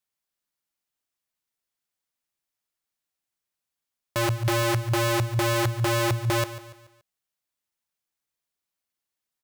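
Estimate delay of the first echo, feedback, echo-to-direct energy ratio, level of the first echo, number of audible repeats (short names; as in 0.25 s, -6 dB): 0.143 s, 43%, -13.5 dB, -14.5 dB, 3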